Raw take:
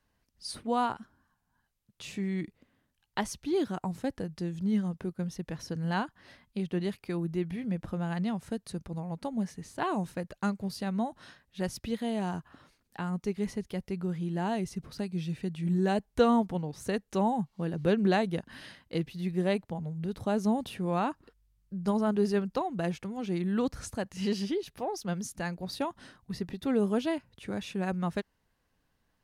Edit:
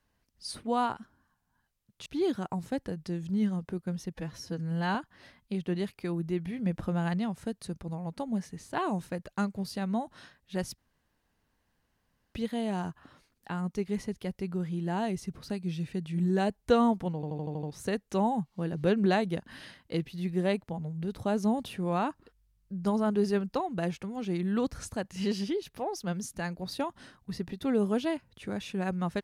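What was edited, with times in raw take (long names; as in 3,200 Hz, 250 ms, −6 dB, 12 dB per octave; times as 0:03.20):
0:02.06–0:03.38: remove
0:05.46–0:06.00: time-stretch 1.5×
0:07.71–0:08.19: clip gain +3 dB
0:11.83: splice in room tone 1.56 s
0:16.64: stutter 0.08 s, 7 plays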